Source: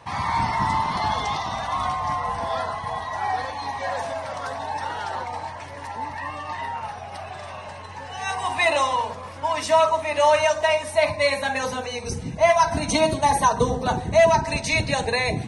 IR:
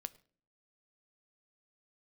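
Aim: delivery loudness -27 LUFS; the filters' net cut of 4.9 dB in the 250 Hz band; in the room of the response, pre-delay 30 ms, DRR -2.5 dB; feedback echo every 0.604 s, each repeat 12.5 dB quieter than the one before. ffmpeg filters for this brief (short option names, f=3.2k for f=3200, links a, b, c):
-filter_complex "[0:a]equalizer=f=250:t=o:g=-6.5,aecho=1:1:604|1208|1812:0.237|0.0569|0.0137,asplit=2[a][b];[1:a]atrim=start_sample=2205,adelay=30[c];[b][c]afir=irnorm=-1:irlink=0,volume=6dB[d];[a][d]amix=inputs=2:normalize=0,volume=-8dB"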